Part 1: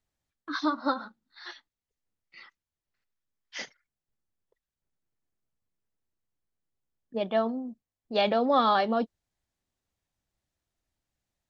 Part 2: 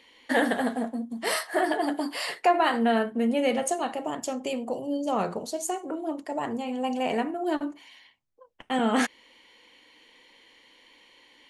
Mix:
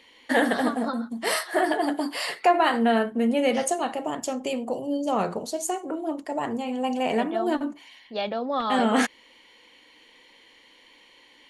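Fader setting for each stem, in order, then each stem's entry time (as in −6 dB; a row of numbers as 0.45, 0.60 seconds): −4.0, +2.0 decibels; 0.00, 0.00 seconds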